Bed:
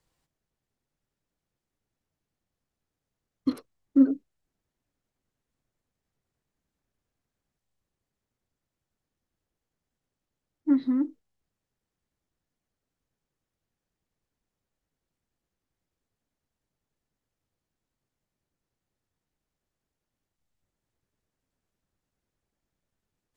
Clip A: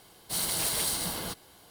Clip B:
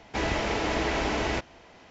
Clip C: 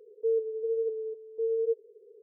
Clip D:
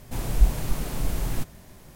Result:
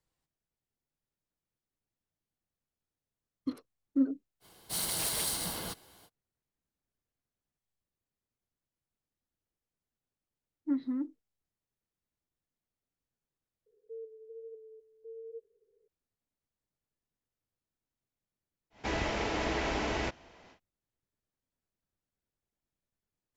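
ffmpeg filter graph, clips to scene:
-filter_complex "[0:a]volume=-8.5dB[a];[1:a]atrim=end=1.7,asetpts=PTS-STARTPTS,volume=-3.5dB,afade=t=in:d=0.05,afade=t=out:st=1.65:d=0.05,adelay=4400[b];[3:a]atrim=end=2.22,asetpts=PTS-STARTPTS,volume=-17.5dB,afade=t=in:d=0.004:c=hsin,afade=t=out:st=2.216:d=0.004:c=hsin,adelay=13660[c];[2:a]atrim=end=1.9,asetpts=PTS-STARTPTS,volume=-5dB,afade=t=in:d=0.1,afade=t=out:st=1.8:d=0.1,adelay=18700[d];[a][b][c][d]amix=inputs=4:normalize=0"

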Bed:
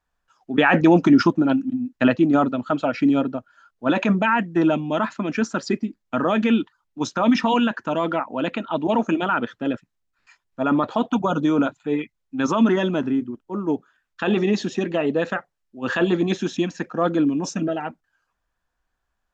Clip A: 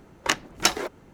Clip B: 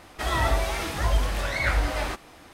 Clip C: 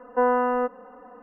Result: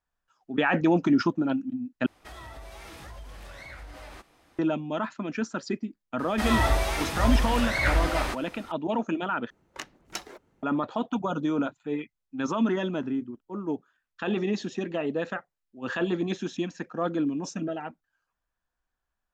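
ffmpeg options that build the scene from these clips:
-filter_complex "[2:a]asplit=2[a][b];[0:a]volume=-7.5dB[c];[a]acompressor=threshold=-27dB:ratio=6:attack=3.2:release=140:knee=1:detection=peak[d];[c]asplit=3[e][f][g];[e]atrim=end=2.064[h];[d]atrim=end=2.53,asetpts=PTS-STARTPTS,volume=-12.5dB[i];[f]atrim=start=4.586:end=9.504[j];[1:a]atrim=end=1.13,asetpts=PTS-STARTPTS,volume=-15.5dB[k];[g]atrim=start=10.626[l];[b]atrim=end=2.53,asetpts=PTS-STARTPTS,afade=t=in:d=0.004:c=hsin,afade=t=out:st=2.526:d=0.004:c=hsin,adelay=6190[m];[h][i]acrossfade=d=0.004:c1=hsin:c2=hsin[n];[n][j]acrossfade=d=0.004:c1=hsin:c2=hsin[o];[o][k]acrossfade=d=0.004:c1=hsin:c2=hsin[p];[p][l]acrossfade=d=0.004:c1=hsin:c2=hsin[q];[q][m]amix=inputs=2:normalize=0"

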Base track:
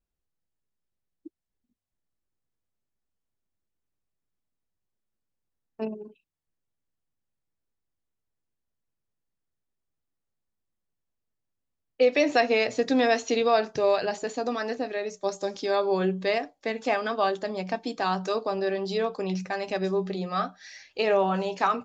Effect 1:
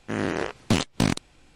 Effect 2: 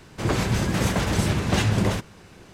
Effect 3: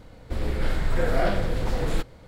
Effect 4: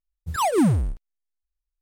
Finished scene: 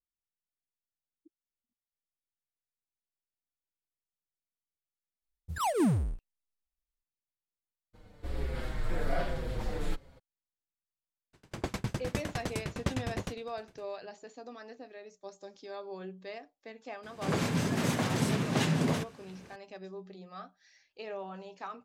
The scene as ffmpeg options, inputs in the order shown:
-filter_complex "[2:a]asplit=2[a][b];[0:a]volume=-17.5dB[c];[3:a]asplit=2[d][e];[e]adelay=6,afreqshift=-1.2[f];[d][f]amix=inputs=2:normalize=1[g];[a]aeval=exprs='val(0)*pow(10,-33*if(lt(mod(9.8*n/s,1),2*abs(9.8)/1000),1-mod(9.8*n/s,1)/(2*abs(9.8)/1000),(mod(9.8*n/s,1)-2*abs(9.8)/1000)/(1-2*abs(9.8)/1000))/20)':c=same[h];[b]afreqshift=53[i];[4:a]atrim=end=1.81,asetpts=PTS-STARTPTS,volume=-8dB,afade=t=in:d=0.004:c=hsin,afade=t=out:st=1.806:d=0.004:c=hsin,adelay=5220[j];[g]atrim=end=2.27,asetpts=PTS-STARTPTS,volume=-6dB,afade=t=in:d=0.02,afade=t=out:st=2.25:d=0.02,adelay=7930[k];[h]atrim=end=2.53,asetpts=PTS-STARTPTS,volume=-5dB,afade=t=in:d=0.02,afade=t=out:st=2.51:d=0.02,adelay=11330[l];[i]atrim=end=2.53,asetpts=PTS-STARTPTS,volume=-7dB,afade=t=in:d=0.004:c=hsin,afade=t=out:st=2.526:d=0.004:c=hsin,adelay=17030[m];[c][j][k][l][m]amix=inputs=5:normalize=0"

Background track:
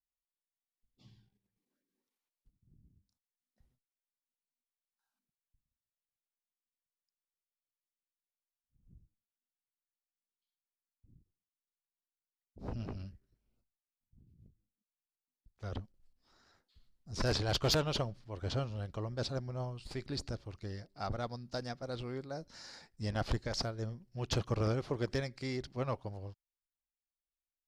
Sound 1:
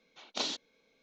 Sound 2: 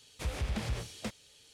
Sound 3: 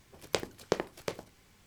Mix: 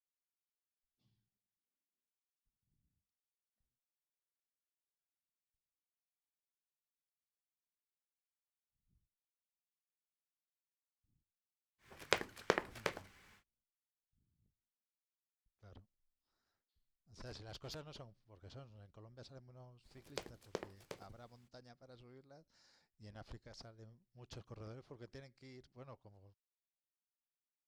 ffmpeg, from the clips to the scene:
-filter_complex "[3:a]asplit=2[a][b];[0:a]volume=-19dB[c];[a]equalizer=f=1.7k:t=o:w=1.9:g=10.5,atrim=end=1.66,asetpts=PTS-STARTPTS,volume=-7dB,afade=t=in:d=0.1,afade=t=out:st=1.56:d=0.1,adelay=519498S[d];[b]atrim=end=1.66,asetpts=PTS-STARTPTS,volume=-14dB,afade=t=in:d=0.02,afade=t=out:st=1.64:d=0.02,adelay=19830[e];[c][d][e]amix=inputs=3:normalize=0"

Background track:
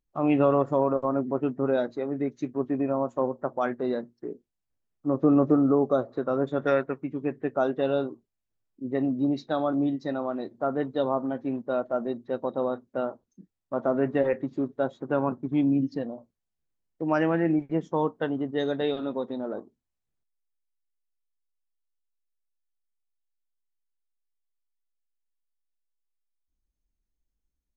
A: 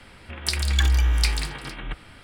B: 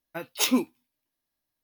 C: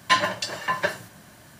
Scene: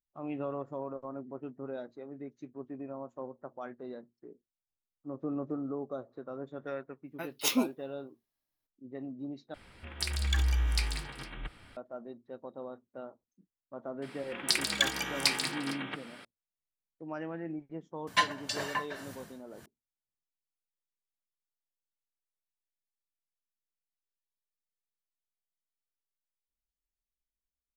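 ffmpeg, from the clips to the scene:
-filter_complex "[1:a]asplit=2[a][b];[0:a]volume=-15dB[c];[b]highpass=f=170:w=0.5412,highpass=f=170:w=1.3066[d];[3:a]tremolo=f=1.8:d=0.86[e];[c]asplit=2[f][g];[f]atrim=end=9.544[h];[a]atrim=end=2.23,asetpts=PTS-STARTPTS,volume=-8.5dB[i];[g]atrim=start=11.766[j];[2:a]atrim=end=1.63,asetpts=PTS-STARTPTS,volume=-5dB,afade=t=in:d=0.004:c=hsin,afade=t=out:st=1.626:d=0.004:c=hsin,adelay=7040[k];[d]atrim=end=2.23,asetpts=PTS-STARTPTS,volume=-1.5dB,afade=t=in:d=0.004:c=hsin,afade=t=out:st=2.226:d=0.004:c=hsin,adelay=14020[l];[e]atrim=end=1.59,asetpts=PTS-STARTPTS,volume=-2.5dB,afade=t=in:d=0.004:c=hsin,afade=t=out:st=1.586:d=0.004:c=hsin,adelay=18070[m];[h][i]acrossfade=d=0.004:c1=hsin:c2=hsin[n];[n][j]acrossfade=d=0.004:c1=hsin:c2=hsin[o];[o][k][l][m]amix=inputs=4:normalize=0"

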